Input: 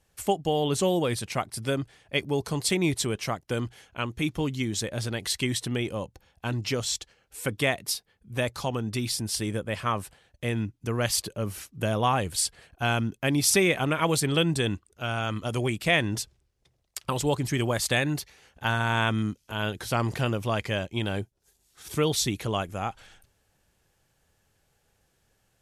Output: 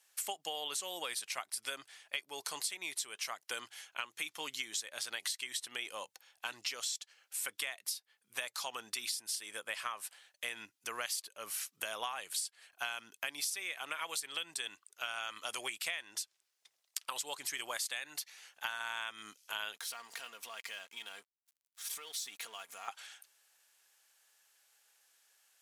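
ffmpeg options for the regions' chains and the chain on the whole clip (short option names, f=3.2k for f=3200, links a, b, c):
-filter_complex "[0:a]asettb=1/sr,asplit=3[a][b][c];[a]atrim=end=19.744[d];[b]atrim=start=19.74:end=22.88,asetpts=PTS-STARTPTS,afade=t=in:d=0.004:c=qsin,afade=t=out:st=3.136:d=0.004:c=qsin,aecho=1:1:4.3:0.56,atrim=end_sample=138474,acompressor=threshold=-38dB:ratio=6:attack=3.2:release=140:knee=1:detection=peak,aeval=exprs='sgn(val(0))*max(abs(val(0))-0.00168,0)':c=same[e];[c]atrim=start=22.876[f];[d][e]acrossfade=d=0.004:c1=hsin:c2=qsin[g];[g][f]acrossfade=d=0.004:c1=qsin:c2=hsin,highpass=1.1k,highshelf=f=3.6k:g=6,acompressor=threshold=-35dB:ratio=12"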